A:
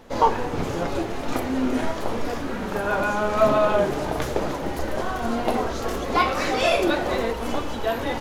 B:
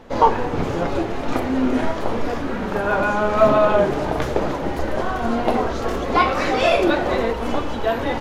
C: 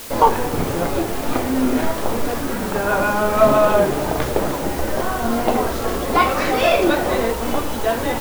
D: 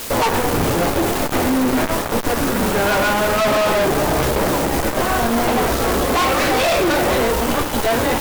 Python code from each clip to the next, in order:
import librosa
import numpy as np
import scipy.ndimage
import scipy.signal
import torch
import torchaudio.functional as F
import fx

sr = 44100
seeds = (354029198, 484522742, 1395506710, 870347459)

y1 = fx.high_shelf(x, sr, hz=5700.0, db=-11.5)
y1 = F.gain(torch.from_numpy(y1), 4.0).numpy()
y2 = fx.quant_dither(y1, sr, seeds[0], bits=6, dither='triangular')
y2 = F.gain(torch.from_numpy(y2), 1.0).numpy()
y3 = fx.fuzz(y2, sr, gain_db=29.0, gate_db=-33.0)
y3 = F.gain(torch.from_numpy(y3), -1.5).numpy()